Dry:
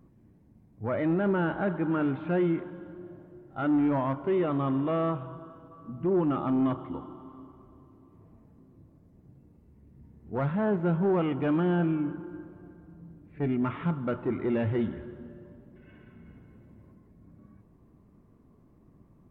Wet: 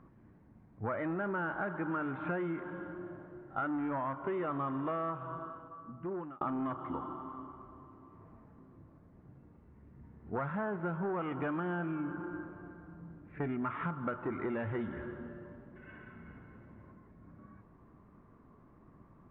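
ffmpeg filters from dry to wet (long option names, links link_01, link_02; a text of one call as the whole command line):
ffmpeg -i in.wav -filter_complex "[0:a]asplit=2[link_01][link_02];[link_01]atrim=end=6.41,asetpts=PTS-STARTPTS,afade=type=out:start_time=5.25:duration=1.16[link_03];[link_02]atrim=start=6.41,asetpts=PTS-STARTPTS,afade=type=in:duration=0.004:curve=hsin[link_04];[link_03][link_04]concat=n=2:v=0:a=1,lowpass=frequency=2200:poles=1,equalizer=frequency=1400:width_type=o:width=1.8:gain=13,acompressor=threshold=-31dB:ratio=6,volume=-2dB" out.wav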